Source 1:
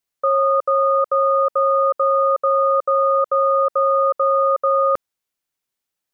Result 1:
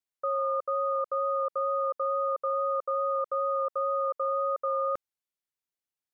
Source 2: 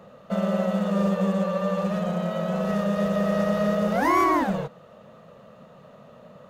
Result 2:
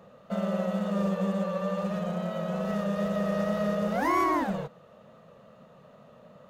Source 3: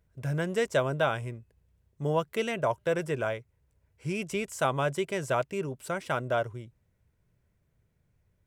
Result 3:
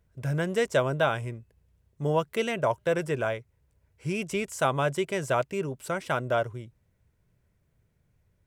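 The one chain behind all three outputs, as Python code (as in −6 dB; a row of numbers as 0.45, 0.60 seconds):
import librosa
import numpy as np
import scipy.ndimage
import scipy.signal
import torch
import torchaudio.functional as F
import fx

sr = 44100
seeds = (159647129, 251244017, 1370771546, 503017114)

y = fx.wow_flutter(x, sr, seeds[0], rate_hz=2.1, depth_cents=18.0)
y = y * 10.0 ** (-30 / 20.0) / np.sqrt(np.mean(np.square(y)))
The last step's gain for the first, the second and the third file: −12.0, −5.0, +2.0 decibels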